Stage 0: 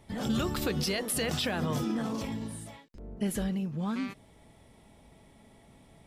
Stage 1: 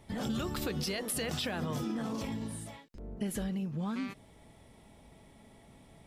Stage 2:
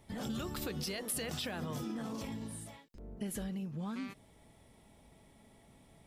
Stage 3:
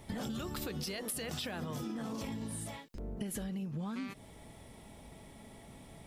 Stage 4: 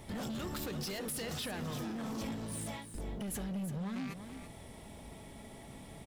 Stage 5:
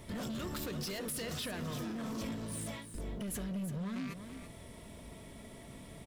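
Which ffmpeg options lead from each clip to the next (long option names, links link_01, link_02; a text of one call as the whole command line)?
ffmpeg -i in.wav -af "acompressor=threshold=-33dB:ratio=2.5" out.wav
ffmpeg -i in.wav -af "highshelf=frequency=8100:gain=5,volume=-4.5dB" out.wav
ffmpeg -i in.wav -af "acompressor=threshold=-45dB:ratio=6,volume=8.5dB" out.wav
ffmpeg -i in.wav -af "asoftclip=type=hard:threshold=-39dB,aecho=1:1:334:0.316,volume=2.5dB" out.wav
ffmpeg -i in.wav -af "asuperstop=centerf=810:order=4:qfactor=6.8" out.wav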